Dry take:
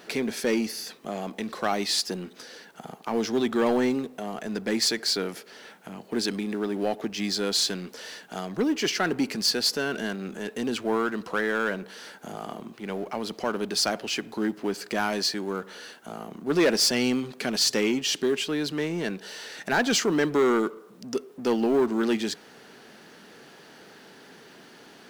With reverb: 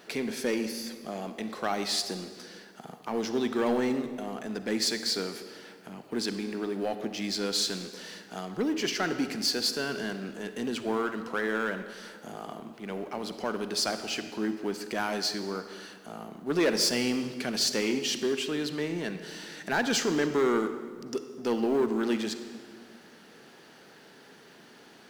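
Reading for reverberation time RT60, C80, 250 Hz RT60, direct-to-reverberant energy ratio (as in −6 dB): 1.8 s, 10.5 dB, 2.3 s, 9.0 dB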